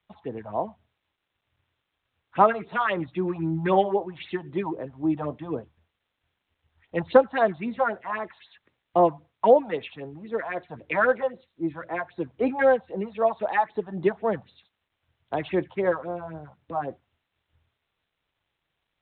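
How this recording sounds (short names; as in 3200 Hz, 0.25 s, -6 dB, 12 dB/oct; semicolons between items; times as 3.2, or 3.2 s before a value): phasing stages 4, 3.8 Hz, lowest notch 340–2900 Hz; a quantiser's noise floor 12-bit, dither triangular; G.726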